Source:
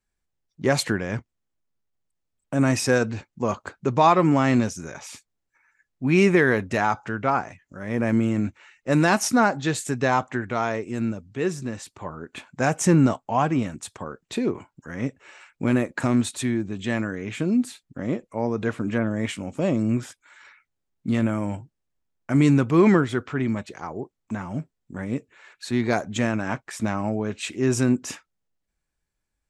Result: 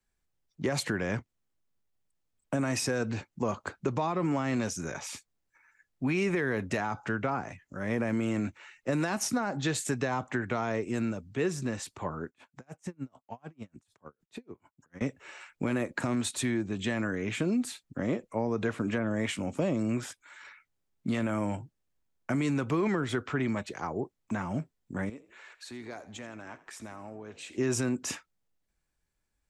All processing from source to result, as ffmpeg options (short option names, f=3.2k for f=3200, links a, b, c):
-filter_complex "[0:a]asettb=1/sr,asplit=3[a][b][c];[a]atrim=end=12.284[d];[b]atrim=start=12.28:end=15.01,asetpts=PTS-STARTPTS,afade=t=in:d=0.004:c=qsin,afade=t=out:st=2.726:d=0.004:c=qsin,acompressor=threshold=-45dB:ratio=2:attack=3.2:release=140:knee=1:detection=peak,aeval=exprs='val(0)*pow(10,-37*(0.5-0.5*cos(2*PI*6.7*n/s))/20)':c=same[e];[c]atrim=start=15.006[f];[d][e]acrossfade=d=0.004:c1=hsin:c2=qsin[g];[g][f]acrossfade=d=0.004:c1=qsin:c2=hsin,asettb=1/sr,asplit=3[h][i][j];[h]atrim=end=25.094[k];[i]atrim=start=25.09:end=27.58,asetpts=PTS-STARTPTS,afade=t=in:d=0.004:c=qsin,afade=t=out:st=2.486:d=0.004:c=qsin,equalizer=f=150:w=1.4:g=-13.5,acompressor=threshold=-47dB:ratio=2.5:attack=3.2:release=140:knee=1:detection=peak,asplit=5[l][m][n][o][p];[m]adelay=83,afreqshift=44,volume=-17dB[q];[n]adelay=166,afreqshift=88,volume=-23.4dB[r];[o]adelay=249,afreqshift=132,volume=-29.8dB[s];[p]adelay=332,afreqshift=176,volume=-36.1dB[t];[l][q][r][s][t]amix=inputs=5:normalize=0,atrim=end_sample=109809[u];[j]atrim=start=27.576[v];[k][u]acrossfade=d=0.004:c1=hsin:c2=qsin[w];[w][v]acrossfade=d=0.004:c1=qsin:c2=hsin,alimiter=limit=-14.5dB:level=0:latency=1:release=84,acrossover=split=97|390[x][y][z];[x]acompressor=threshold=-48dB:ratio=4[aa];[y]acompressor=threshold=-31dB:ratio=4[ab];[z]acompressor=threshold=-30dB:ratio=4[ac];[aa][ab][ac]amix=inputs=3:normalize=0"